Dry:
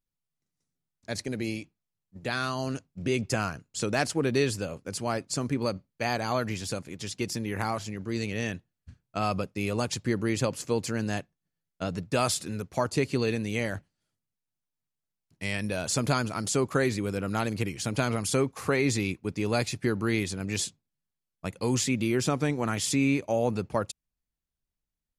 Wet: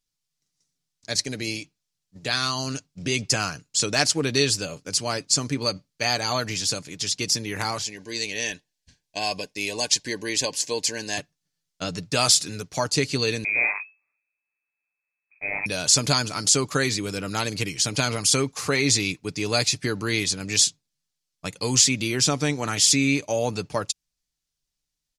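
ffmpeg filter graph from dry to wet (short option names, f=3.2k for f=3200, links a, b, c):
-filter_complex "[0:a]asettb=1/sr,asplit=3[a][b][c];[a]atrim=end=7.824[d];[b]atrim=start=7.82:end=11.18,asetpts=PTS-STARTPTS,afade=t=in:d=0.004:c=qsin,afade=t=out:st=3.356:d=0.004:c=qsin,asuperstop=centerf=1300:order=20:qfactor=3.8,equalizer=f=120:w=0.8:g=-13[e];[c]atrim=start=11.176[f];[d][e]acrossfade=d=0.004:c1=hsin:c2=qsin[g];[g][f]acrossfade=d=0.004:c1=qsin:c2=hsin,asettb=1/sr,asplit=3[h][i][j];[h]atrim=end=13.444[k];[i]atrim=start=13.44:end=15.66,asetpts=PTS-STARTPTS,afade=t=in:d=0.004:c=qsin,afade=t=out:st=2.216:d=0.004:c=qsin,aeval=exprs='if(lt(val(0),0),0.251*val(0),val(0))':c=same,lowpass=f=2.2k:t=q:w=0.5098,lowpass=f=2.2k:t=q:w=0.6013,lowpass=f=2.2k:t=q:w=0.9,lowpass=f=2.2k:t=q:w=2.563,afreqshift=-2600,asplit=2[l][m];[m]adelay=41,volume=-3dB[n];[l][n]amix=inputs=2:normalize=0,atrim=end_sample=97902[o];[j]atrim=start=15.656[p];[k][o]acrossfade=d=0.004:c1=hsin:c2=qsin[q];[q][p]acrossfade=d=0.004:c1=qsin:c2=hsin,equalizer=f=5.4k:t=o:w=2:g=14.5,aecho=1:1:6.8:0.33"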